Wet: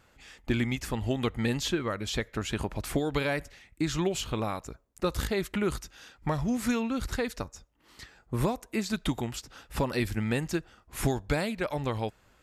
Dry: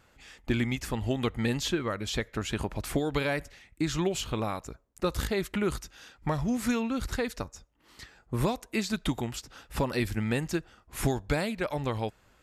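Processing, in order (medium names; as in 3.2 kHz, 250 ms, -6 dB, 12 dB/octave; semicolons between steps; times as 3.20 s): 8.45–8.86 s: dynamic bell 3.7 kHz, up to -7 dB, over -49 dBFS, Q 0.99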